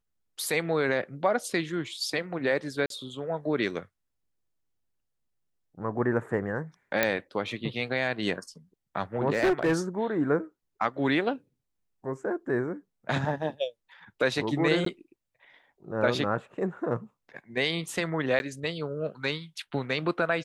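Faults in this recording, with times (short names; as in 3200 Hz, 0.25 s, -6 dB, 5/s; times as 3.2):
2.86–2.9 gap 42 ms
7.03 pop -8 dBFS
9.33–9.77 clipped -19.5 dBFS
14.85–14.86 gap 13 ms
18.39–18.4 gap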